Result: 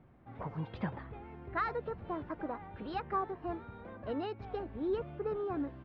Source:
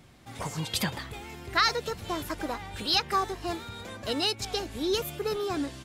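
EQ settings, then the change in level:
low-pass filter 1,400 Hz 12 dB per octave
high-frequency loss of the air 240 metres
mains-hum notches 50/100 Hz
−4.5 dB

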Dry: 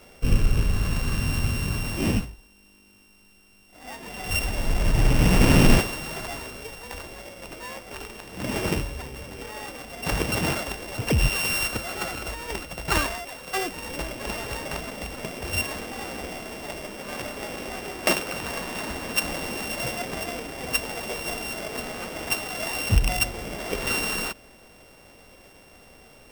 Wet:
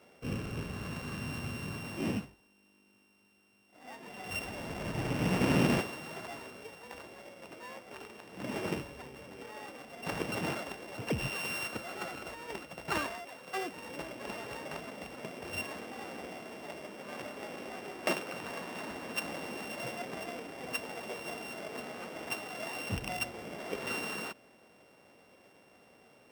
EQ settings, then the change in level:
high-pass filter 150 Hz 12 dB per octave
high-shelf EQ 3,900 Hz −8.5 dB
−7.5 dB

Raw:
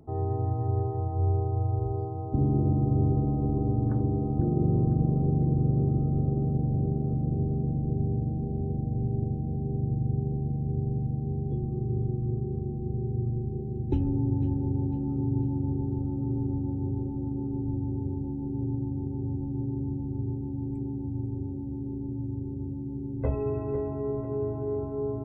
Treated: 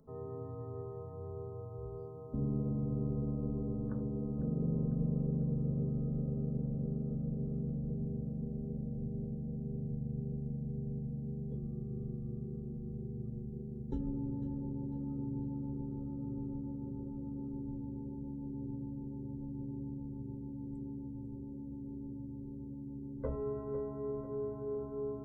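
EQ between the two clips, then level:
mains-hum notches 50/100/150/200/250/300/350/400 Hz
phaser with its sweep stopped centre 500 Hz, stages 8
−4.5 dB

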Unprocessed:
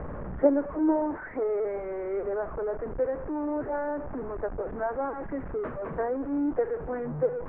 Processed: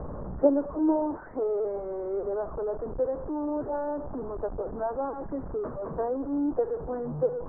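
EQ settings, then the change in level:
low-pass filter 1,200 Hz 24 dB per octave
0.0 dB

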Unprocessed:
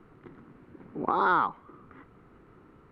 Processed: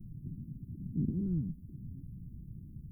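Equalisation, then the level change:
inverse Chebyshev band-stop filter 680–4,200 Hz, stop band 70 dB
+14.5 dB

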